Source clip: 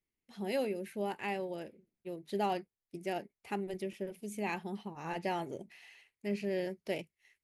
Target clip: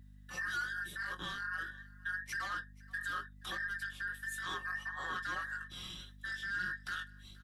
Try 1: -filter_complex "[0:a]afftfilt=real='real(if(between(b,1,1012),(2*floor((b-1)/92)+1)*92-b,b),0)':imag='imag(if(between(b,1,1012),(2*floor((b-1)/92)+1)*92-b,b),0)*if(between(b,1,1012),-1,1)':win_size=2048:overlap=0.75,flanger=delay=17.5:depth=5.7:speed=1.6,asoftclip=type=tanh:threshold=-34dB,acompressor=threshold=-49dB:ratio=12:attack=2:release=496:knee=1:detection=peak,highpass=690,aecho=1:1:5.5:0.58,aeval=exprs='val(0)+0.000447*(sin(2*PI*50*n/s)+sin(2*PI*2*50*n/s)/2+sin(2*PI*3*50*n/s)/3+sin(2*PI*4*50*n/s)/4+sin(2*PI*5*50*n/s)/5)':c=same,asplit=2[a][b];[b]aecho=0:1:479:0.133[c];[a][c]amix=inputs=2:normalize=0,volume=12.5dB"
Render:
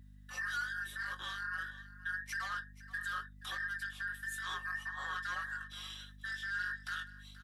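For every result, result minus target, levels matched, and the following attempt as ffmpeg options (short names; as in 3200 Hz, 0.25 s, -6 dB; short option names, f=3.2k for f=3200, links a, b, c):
500 Hz band -6.5 dB; echo-to-direct +6 dB
-filter_complex "[0:a]afftfilt=real='real(if(between(b,1,1012),(2*floor((b-1)/92)+1)*92-b,b),0)':imag='imag(if(between(b,1,1012),(2*floor((b-1)/92)+1)*92-b,b),0)*if(between(b,1,1012),-1,1)':win_size=2048:overlap=0.75,flanger=delay=17.5:depth=5.7:speed=1.6,asoftclip=type=tanh:threshold=-34dB,acompressor=threshold=-49dB:ratio=12:attack=2:release=496:knee=1:detection=peak,aecho=1:1:5.5:0.58,aeval=exprs='val(0)+0.000447*(sin(2*PI*50*n/s)+sin(2*PI*2*50*n/s)/2+sin(2*PI*3*50*n/s)/3+sin(2*PI*4*50*n/s)/4+sin(2*PI*5*50*n/s)/5)':c=same,asplit=2[a][b];[b]aecho=0:1:479:0.133[c];[a][c]amix=inputs=2:normalize=0,volume=12.5dB"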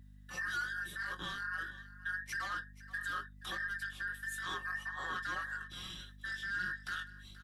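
echo-to-direct +6 dB
-filter_complex "[0:a]afftfilt=real='real(if(between(b,1,1012),(2*floor((b-1)/92)+1)*92-b,b),0)':imag='imag(if(between(b,1,1012),(2*floor((b-1)/92)+1)*92-b,b),0)*if(between(b,1,1012),-1,1)':win_size=2048:overlap=0.75,flanger=delay=17.5:depth=5.7:speed=1.6,asoftclip=type=tanh:threshold=-34dB,acompressor=threshold=-49dB:ratio=12:attack=2:release=496:knee=1:detection=peak,aecho=1:1:5.5:0.58,aeval=exprs='val(0)+0.000447*(sin(2*PI*50*n/s)+sin(2*PI*2*50*n/s)/2+sin(2*PI*3*50*n/s)/3+sin(2*PI*4*50*n/s)/4+sin(2*PI*5*50*n/s)/5)':c=same,asplit=2[a][b];[b]aecho=0:1:479:0.0668[c];[a][c]amix=inputs=2:normalize=0,volume=12.5dB"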